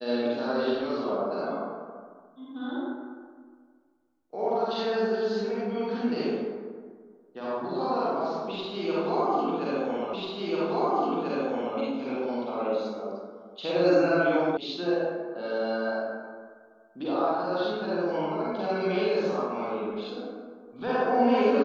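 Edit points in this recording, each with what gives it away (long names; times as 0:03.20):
0:10.13: the same again, the last 1.64 s
0:14.57: cut off before it has died away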